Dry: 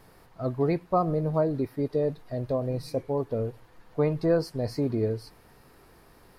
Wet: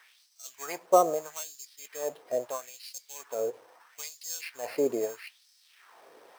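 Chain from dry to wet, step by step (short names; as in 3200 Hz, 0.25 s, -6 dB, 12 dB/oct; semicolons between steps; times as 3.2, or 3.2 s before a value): sample-rate reducer 7000 Hz, jitter 0%; LFO high-pass sine 0.77 Hz 450–5000 Hz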